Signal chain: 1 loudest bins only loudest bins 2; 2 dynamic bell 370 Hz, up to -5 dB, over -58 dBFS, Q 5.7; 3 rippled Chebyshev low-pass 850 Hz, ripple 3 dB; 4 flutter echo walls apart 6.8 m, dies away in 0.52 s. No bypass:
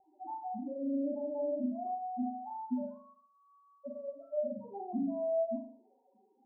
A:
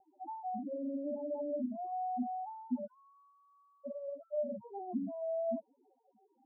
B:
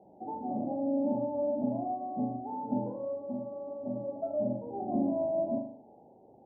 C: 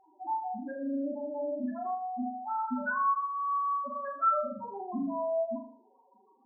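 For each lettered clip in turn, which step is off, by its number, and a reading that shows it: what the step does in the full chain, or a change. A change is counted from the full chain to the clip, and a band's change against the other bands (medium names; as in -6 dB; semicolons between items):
4, echo-to-direct -2.5 dB to none; 1, crest factor change +3.0 dB; 3, loudness change +4.5 LU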